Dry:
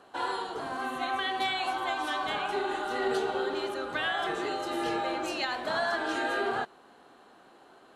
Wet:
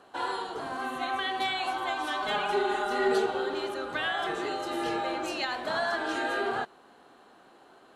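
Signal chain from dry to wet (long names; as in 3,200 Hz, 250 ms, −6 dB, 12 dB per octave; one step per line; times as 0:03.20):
0:02.22–0:03.26: comb filter 4.8 ms, depth 81%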